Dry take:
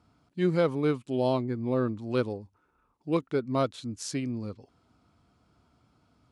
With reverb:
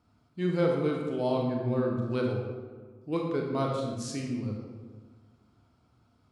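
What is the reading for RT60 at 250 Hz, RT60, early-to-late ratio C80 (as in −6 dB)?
1.8 s, 1.4 s, 4.0 dB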